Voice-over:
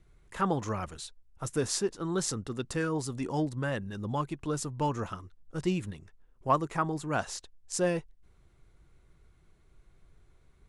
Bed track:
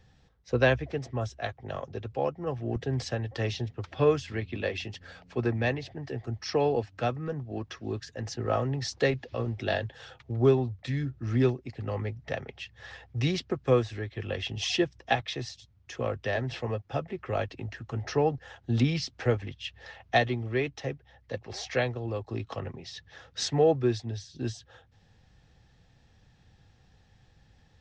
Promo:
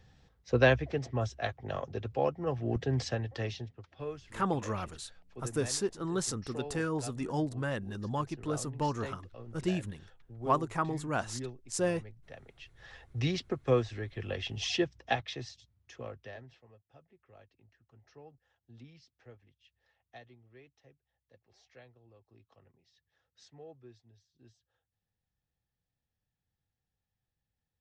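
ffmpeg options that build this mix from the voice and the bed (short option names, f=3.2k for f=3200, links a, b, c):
-filter_complex "[0:a]adelay=4000,volume=-2dB[a];[1:a]volume=12.5dB,afade=t=out:st=2.99:d=0.88:silence=0.158489,afade=t=in:st=12.38:d=0.87:silence=0.223872,afade=t=out:st=14.97:d=1.63:silence=0.0595662[b];[a][b]amix=inputs=2:normalize=0"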